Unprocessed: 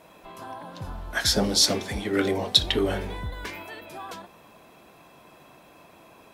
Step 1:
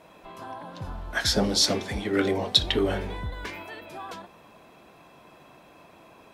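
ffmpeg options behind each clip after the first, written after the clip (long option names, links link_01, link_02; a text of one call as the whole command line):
ffmpeg -i in.wav -af "highshelf=frequency=8200:gain=-8.5" out.wav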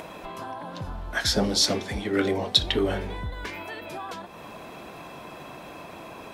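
ffmpeg -i in.wav -af "acompressor=mode=upward:threshold=-30dB:ratio=2.5" out.wav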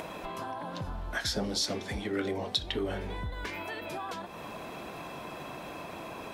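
ffmpeg -i in.wav -af "acompressor=threshold=-35dB:ratio=2" out.wav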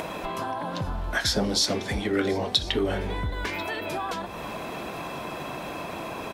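ffmpeg -i in.wav -af "aecho=1:1:1041:0.0944,volume=7dB" out.wav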